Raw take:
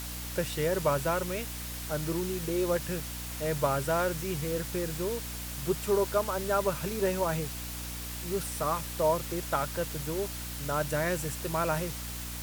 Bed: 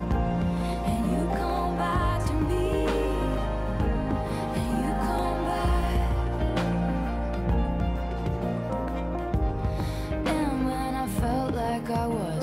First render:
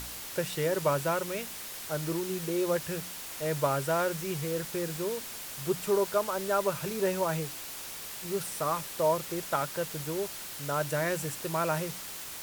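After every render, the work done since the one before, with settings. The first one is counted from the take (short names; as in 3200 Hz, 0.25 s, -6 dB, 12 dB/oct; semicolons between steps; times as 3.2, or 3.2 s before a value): de-hum 60 Hz, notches 5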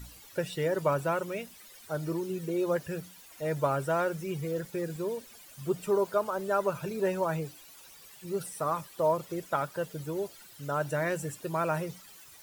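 denoiser 15 dB, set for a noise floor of -41 dBFS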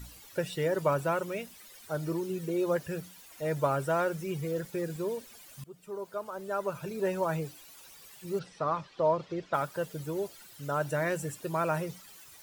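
5.64–7.34 fade in, from -23 dB; 8.39–9.54 LPF 5000 Hz 24 dB/oct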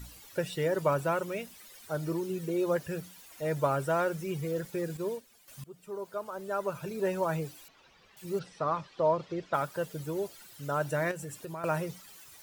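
4.97–5.48 upward expander, over -50 dBFS; 7.68–8.17 air absorption 230 m; 11.11–11.64 compressor 4:1, threshold -37 dBFS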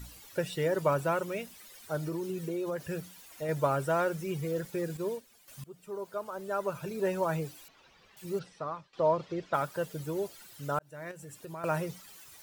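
2.04–3.49 compressor, threshold -30 dBFS; 8.27–8.93 fade out, to -17 dB; 10.79–11.75 fade in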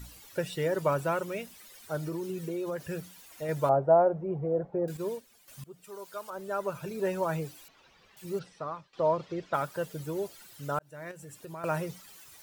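3.69–4.88 synth low-pass 730 Hz, resonance Q 3.7; 5.84–6.3 tilt shelf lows -7.5 dB, about 1200 Hz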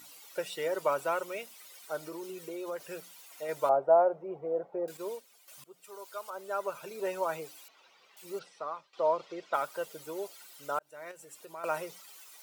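HPF 470 Hz 12 dB/oct; notch 1700 Hz, Q 9.1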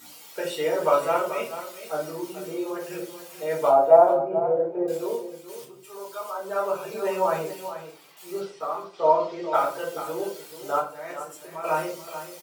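echo 0.434 s -11.5 dB; shoebox room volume 260 m³, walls furnished, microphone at 3.9 m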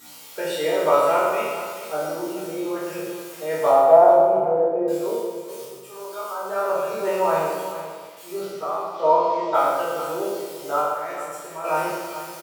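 spectral trails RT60 0.99 s; feedback echo 0.118 s, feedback 51%, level -8 dB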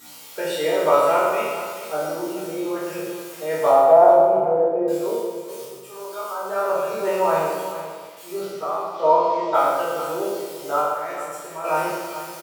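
gain +1 dB; limiter -3 dBFS, peak gain reduction 2.5 dB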